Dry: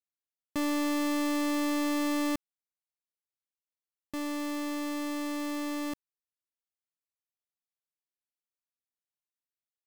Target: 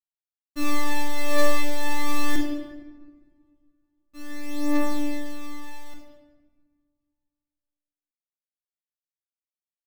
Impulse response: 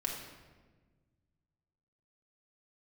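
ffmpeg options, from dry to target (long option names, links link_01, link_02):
-filter_complex "[0:a]aphaser=in_gain=1:out_gain=1:delay=2.9:decay=0.67:speed=0.21:type=triangular,agate=range=-33dB:threshold=-21dB:ratio=3:detection=peak[link_01];[1:a]atrim=start_sample=2205[link_02];[link_01][link_02]afir=irnorm=-1:irlink=0,volume=8dB"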